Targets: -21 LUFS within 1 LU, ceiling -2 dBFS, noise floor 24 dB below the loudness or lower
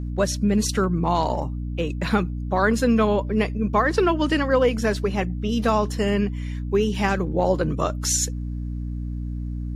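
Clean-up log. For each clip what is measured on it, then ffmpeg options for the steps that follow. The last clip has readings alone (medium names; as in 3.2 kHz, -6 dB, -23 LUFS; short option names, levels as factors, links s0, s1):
hum 60 Hz; highest harmonic 300 Hz; hum level -26 dBFS; loudness -23.0 LUFS; peak level -6.5 dBFS; loudness target -21.0 LUFS
-> -af "bandreject=f=60:t=h:w=6,bandreject=f=120:t=h:w=6,bandreject=f=180:t=h:w=6,bandreject=f=240:t=h:w=6,bandreject=f=300:t=h:w=6"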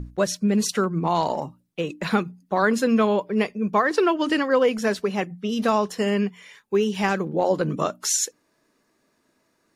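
hum not found; loudness -23.0 LUFS; peak level -7.5 dBFS; loudness target -21.0 LUFS
-> -af "volume=1.26"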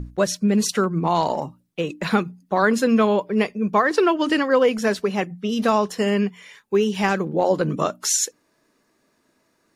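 loudness -21.0 LUFS; peak level -5.5 dBFS; noise floor -67 dBFS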